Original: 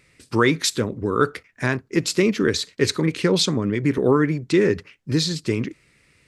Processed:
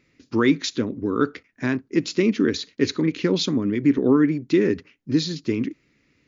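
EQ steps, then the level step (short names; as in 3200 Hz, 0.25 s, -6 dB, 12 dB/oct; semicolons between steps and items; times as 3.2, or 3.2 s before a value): bell 270 Hz +12.5 dB 0.85 oct; dynamic EQ 2800 Hz, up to +4 dB, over -35 dBFS, Q 0.76; brick-wall FIR low-pass 7200 Hz; -7.5 dB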